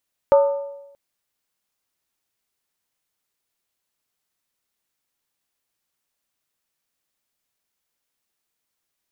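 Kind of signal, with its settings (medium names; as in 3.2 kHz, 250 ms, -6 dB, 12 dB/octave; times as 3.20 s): skin hit, lowest mode 562 Hz, decay 0.95 s, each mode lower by 9 dB, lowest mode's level -8.5 dB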